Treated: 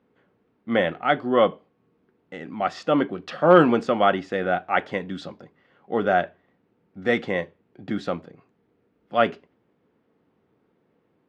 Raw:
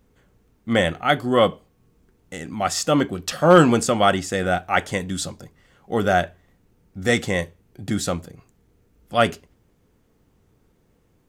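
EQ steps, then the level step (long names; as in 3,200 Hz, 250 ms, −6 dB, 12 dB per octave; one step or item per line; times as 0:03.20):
high-pass filter 220 Hz 12 dB per octave
low-pass filter 10,000 Hz
high-frequency loss of the air 330 metres
0.0 dB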